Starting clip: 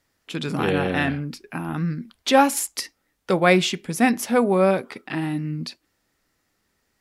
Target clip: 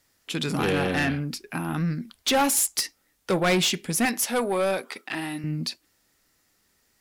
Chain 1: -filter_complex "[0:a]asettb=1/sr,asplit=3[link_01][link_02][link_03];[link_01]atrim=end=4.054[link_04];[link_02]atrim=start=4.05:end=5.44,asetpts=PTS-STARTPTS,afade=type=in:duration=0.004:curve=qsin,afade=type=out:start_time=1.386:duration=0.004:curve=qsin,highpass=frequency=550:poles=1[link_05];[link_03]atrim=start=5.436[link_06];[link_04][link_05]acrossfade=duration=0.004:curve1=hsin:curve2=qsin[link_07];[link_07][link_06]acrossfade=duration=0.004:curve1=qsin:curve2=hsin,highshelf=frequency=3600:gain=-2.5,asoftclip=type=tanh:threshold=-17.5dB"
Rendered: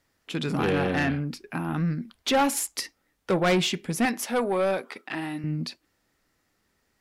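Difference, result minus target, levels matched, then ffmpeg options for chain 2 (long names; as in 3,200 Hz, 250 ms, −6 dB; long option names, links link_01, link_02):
8,000 Hz band −5.5 dB
-filter_complex "[0:a]asettb=1/sr,asplit=3[link_01][link_02][link_03];[link_01]atrim=end=4.054[link_04];[link_02]atrim=start=4.05:end=5.44,asetpts=PTS-STARTPTS,afade=type=in:duration=0.004:curve=qsin,afade=type=out:start_time=1.386:duration=0.004:curve=qsin,highpass=frequency=550:poles=1[link_05];[link_03]atrim=start=5.436[link_06];[link_04][link_05]acrossfade=duration=0.004:curve1=hsin:curve2=qsin[link_07];[link_07][link_06]acrossfade=duration=0.004:curve1=qsin:curve2=hsin,highshelf=frequency=3600:gain=8.5,asoftclip=type=tanh:threshold=-17.5dB"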